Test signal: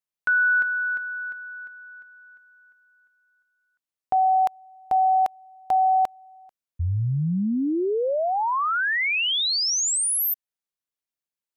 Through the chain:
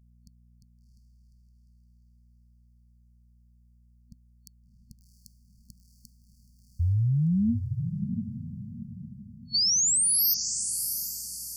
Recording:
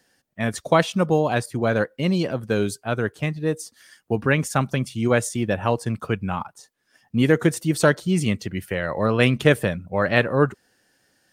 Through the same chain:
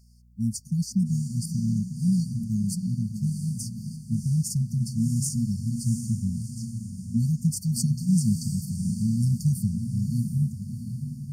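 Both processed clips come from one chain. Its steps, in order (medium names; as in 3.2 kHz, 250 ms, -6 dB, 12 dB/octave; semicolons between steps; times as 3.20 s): hum 60 Hz, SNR 33 dB; echo that smears into a reverb 699 ms, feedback 41%, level -7 dB; FFT band-reject 240–4400 Hz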